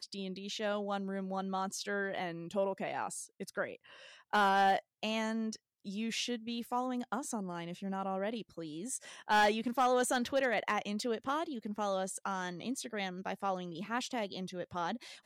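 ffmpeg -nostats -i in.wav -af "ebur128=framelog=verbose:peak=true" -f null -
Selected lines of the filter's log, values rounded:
Integrated loudness:
  I:         -35.4 LUFS
  Threshold: -45.6 LUFS
Loudness range:
  LRA:         5.5 LU
  Threshold: -55.2 LUFS
  LRA low:   -38.2 LUFS
  LRA high:  -32.7 LUFS
True peak:
  Peak:      -22.0 dBFS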